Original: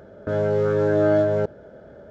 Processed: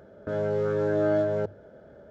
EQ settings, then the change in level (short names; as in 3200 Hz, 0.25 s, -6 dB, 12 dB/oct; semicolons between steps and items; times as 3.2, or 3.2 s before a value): notches 50/100 Hz; -5.5 dB